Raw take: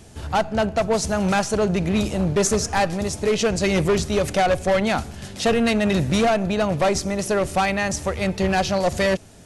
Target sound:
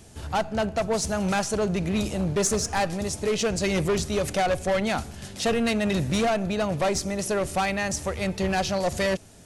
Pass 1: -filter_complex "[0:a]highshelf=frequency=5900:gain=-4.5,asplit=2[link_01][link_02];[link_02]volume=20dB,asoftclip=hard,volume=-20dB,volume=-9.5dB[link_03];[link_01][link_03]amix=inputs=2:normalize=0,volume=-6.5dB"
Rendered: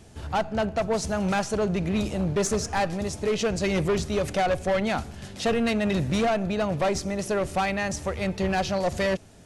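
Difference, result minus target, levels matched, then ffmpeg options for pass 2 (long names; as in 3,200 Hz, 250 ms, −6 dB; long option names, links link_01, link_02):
8,000 Hz band −4.5 dB
-filter_complex "[0:a]highshelf=frequency=5900:gain=4.5,asplit=2[link_01][link_02];[link_02]volume=20dB,asoftclip=hard,volume=-20dB,volume=-9.5dB[link_03];[link_01][link_03]amix=inputs=2:normalize=0,volume=-6.5dB"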